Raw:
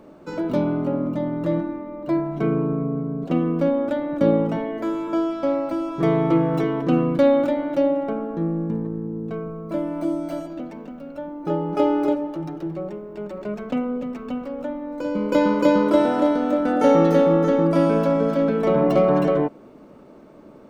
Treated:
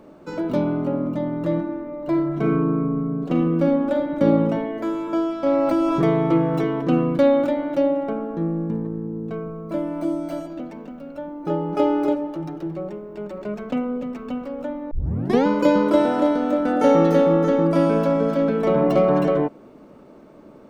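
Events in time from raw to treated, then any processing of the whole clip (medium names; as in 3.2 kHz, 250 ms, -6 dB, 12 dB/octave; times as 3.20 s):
1.62–4.35 s: reverb throw, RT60 0.83 s, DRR 4.5 dB
5.46–6.10 s: level flattener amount 70%
14.91 s: tape start 0.55 s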